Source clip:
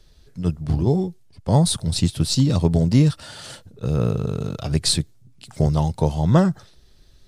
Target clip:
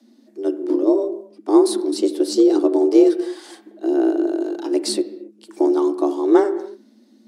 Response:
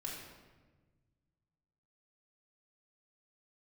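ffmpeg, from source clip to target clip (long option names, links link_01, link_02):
-filter_complex "[0:a]equalizer=frequency=130:width_type=o:width=0.7:gain=8,afreqshift=210,asplit=2[link_01][link_02];[1:a]atrim=start_sample=2205,afade=type=out:start_time=0.34:duration=0.01,atrim=end_sample=15435,lowpass=2200[link_03];[link_02][link_03]afir=irnorm=-1:irlink=0,volume=-6dB[link_04];[link_01][link_04]amix=inputs=2:normalize=0,volume=-5dB"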